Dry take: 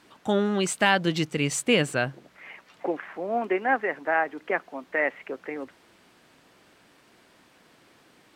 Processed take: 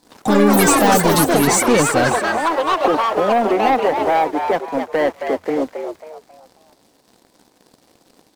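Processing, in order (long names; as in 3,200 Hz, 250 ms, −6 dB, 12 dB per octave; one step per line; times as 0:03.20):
flat-topped bell 1,900 Hz −12 dB
comb filter 4 ms, depth 32%
in parallel at −1 dB: downward compressor, threshold −36 dBFS, peak gain reduction 18.5 dB
on the sum: leveller curve on the samples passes 3
on a send: echo with shifted repeats 271 ms, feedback 33%, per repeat +85 Hz, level −7 dB
on the sum: delay with pitch and tempo change per echo 100 ms, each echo +6 semitones, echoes 3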